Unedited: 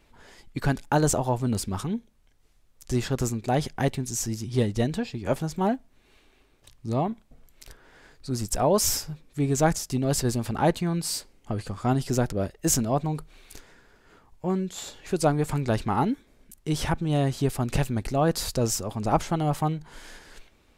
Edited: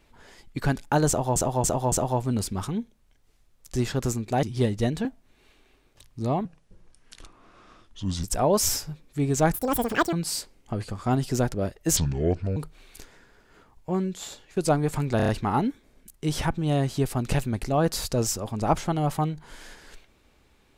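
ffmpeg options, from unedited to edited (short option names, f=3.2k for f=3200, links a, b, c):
-filter_complex "[0:a]asplit=17[a][b][c][d][e][f][g][h][i][j][k][l][m][n][o][p][q];[a]atrim=end=1.362[r];[b]atrim=start=1.078:end=1.362[s];[c]atrim=start=1.078:end=1.362[t];[d]atrim=start=1.078:end=3.592[u];[e]atrim=start=4.398:end=5.022[v];[f]atrim=start=5.718:end=7.124[w];[g]atrim=start=7.12:end=8.44,asetpts=PTS-STARTPTS,asetrate=32634,aresample=44100[x];[h]atrim=start=8.436:end=9.744[y];[i]atrim=start=9.74:end=10.91,asetpts=PTS-STARTPTS,asetrate=86877,aresample=44100,atrim=end_sample=26191,asetpts=PTS-STARTPTS[z];[j]atrim=start=10.906:end=12.754[aa];[k]atrim=start=12.75:end=13.12,asetpts=PTS-STARTPTS,asetrate=27342,aresample=44100[ab];[l]atrim=start=13.116:end=15.12,asetpts=PTS-STARTPTS,afade=t=out:st=1.544:d=0.46:c=qsin:silence=0.188365[ac];[m]atrim=start=15.12:end=15.752,asetpts=PTS-STARTPTS,afade=t=in:d=0.004:c=hsin:silence=0.188365[ad];[n]atrim=start=15.718:end=15.752[ae];[o]atrim=start=15.718:end=15.752[af];[p]atrim=start=15.718:end=15.752[ag];[q]atrim=start=15.718[ah];[r][s]acrossfade=d=0.004:c1=hsin:c2=hsin[ai];[ai][t]acrossfade=d=0.004:c1=hsin:c2=hsin[aj];[aj][u]acrossfade=d=0.004:c1=hsin:c2=hsin[ak];[ak][v]acrossfade=d=0.004:c1=hsin:c2=hsin[al];[al][w]acrossfade=d=0.004:c1=hsin:c2=hsin[am];[am][x]acrossfade=d=0.004:c1=hsin:c2=hsin[an];[an][y]acrossfade=d=0.004:c1=hsin:c2=hsin[ao];[ao][z]acrossfade=d=0.004:c1=hsin:c2=hsin[ap];[ap][aa]acrossfade=d=0.004:c1=hsin:c2=hsin[aq];[aq][ab]acrossfade=d=0.004:c1=hsin:c2=hsin[ar];[ac][ad]concat=n=2:v=0:a=1[as];[ar][as]acrossfade=d=0.004:c1=hsin:c2=hsin[at];[at][ae]acrossfade=d=0.004:c1=hsin:c2=hsin[au];[au][af]acrossfade=d=0.004:c1=hsin:c2=hsin[av];[av][ag]acrossfade=d=0.004:c1=hsin:c2=hsin[aw];[aw][ah]acrossfade=d=0.004:c1=hsin:c2=hsin"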